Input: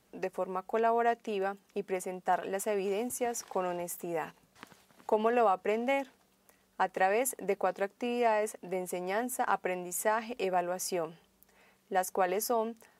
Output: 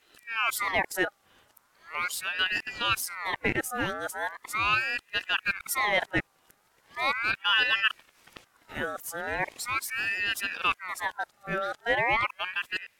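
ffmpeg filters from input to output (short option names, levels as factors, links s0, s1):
-af "areverse,aeval=exprs='val(0)*sin(2*PI*1600*n/s+1600*0.4/0.39*sin(2*PI*0.39*n/s))':c=same,volume=1.78"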